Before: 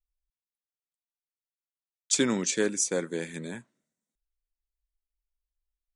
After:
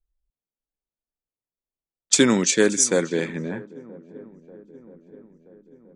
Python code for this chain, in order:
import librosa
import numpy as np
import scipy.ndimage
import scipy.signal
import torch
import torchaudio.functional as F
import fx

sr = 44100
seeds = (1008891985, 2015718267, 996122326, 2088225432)

y = fx.echo_swing(x, sr, ms=978, ratio=1.5, feedback_pct=56, wet_db=-20)
y = fx.env_lowpass(y, sr, base_hz=580.0, full_db=-23.0)
y = y * 10.0 ** (8.5 / 20.0)